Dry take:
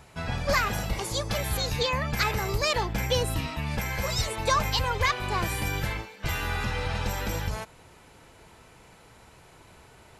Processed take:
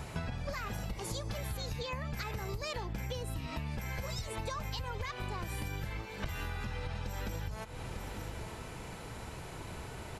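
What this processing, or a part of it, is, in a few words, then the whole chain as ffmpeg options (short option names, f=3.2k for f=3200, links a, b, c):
serial compression, leveller first: -af "lowshelf=f=350:g=5.5,aecho=1:1:898:0.0631,acompressor=threshold=-29dB:ratio=2.5,acompressor=threshold=-41dB:ratio=10,volume=6dB"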